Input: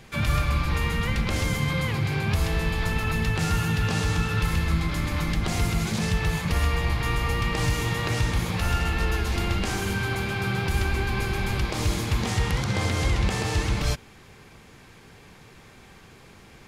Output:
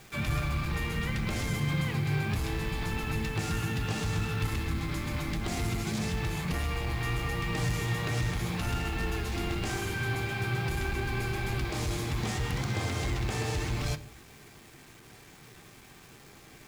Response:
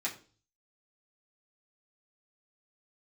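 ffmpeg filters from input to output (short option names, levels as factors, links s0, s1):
-filter_complex "[0:a]asoftclip=type=tanh:threshold=0.126,acrusher=bits=7:mix=0:aa=0.000001,asplit=2[s0][s1];[1:a]atrim=start_sample=2205,lowshelf=f=340:g=12[s2];[s1][s2]afir=irnorm=-1:irlink=0,volume=0.335[s3];[s0][s3]amix=inputs=2:normalize=0,volume=0.447"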